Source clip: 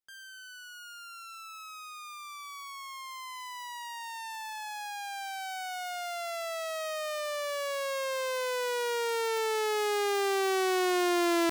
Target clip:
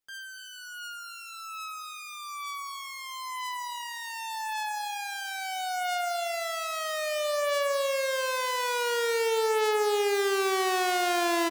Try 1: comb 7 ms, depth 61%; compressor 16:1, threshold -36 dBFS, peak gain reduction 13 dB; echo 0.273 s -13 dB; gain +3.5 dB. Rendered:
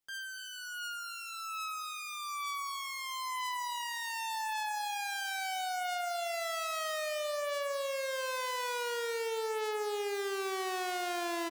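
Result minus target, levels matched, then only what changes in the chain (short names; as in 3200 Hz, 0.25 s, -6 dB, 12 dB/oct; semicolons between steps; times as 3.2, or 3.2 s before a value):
compressor: peak gain reduction +9.5 dB
change: compressor 16:1, threshold -26 dBFS, peak gain reduction 3.5 dB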